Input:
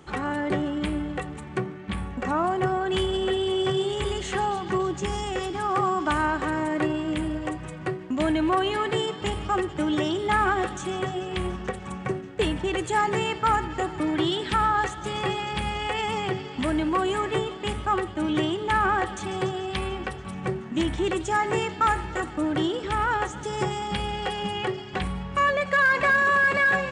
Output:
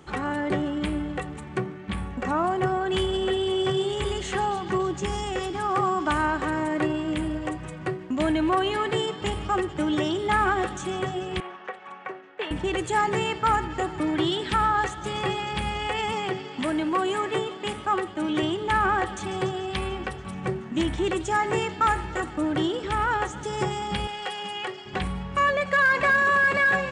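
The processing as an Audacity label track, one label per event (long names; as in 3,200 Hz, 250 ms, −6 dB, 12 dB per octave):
11.400000	12.510000	band-pass filter 660–2,600 Hz
16.120000	18.430000	Bessel high-pass filter 180 Hz
24.070000	24.860000	high-pass filter 820 Hz 6 dB per octave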